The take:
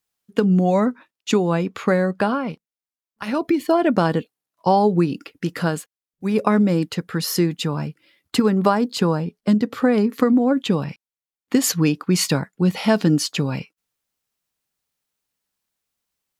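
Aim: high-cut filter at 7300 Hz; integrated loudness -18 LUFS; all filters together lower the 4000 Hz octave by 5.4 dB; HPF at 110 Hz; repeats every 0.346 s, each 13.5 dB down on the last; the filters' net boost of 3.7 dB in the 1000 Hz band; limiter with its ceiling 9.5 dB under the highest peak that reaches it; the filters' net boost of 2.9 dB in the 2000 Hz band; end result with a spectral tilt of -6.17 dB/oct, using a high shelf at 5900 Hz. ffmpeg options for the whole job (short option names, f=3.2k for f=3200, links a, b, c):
-af "highpass=110,lowpass=7.3k,equalizer=f=1k:t=o:g=4.5,equalizer=f=2k:t=o:g=4,equalizer=f=4k:t=o:g=-5.5,highshelf=f=5.9k:g=-7,alimiter=limit=-8.5dB:level=0:latency=1,aecho=1:1:346|692:0.211|0.0444,volume=3.5dB"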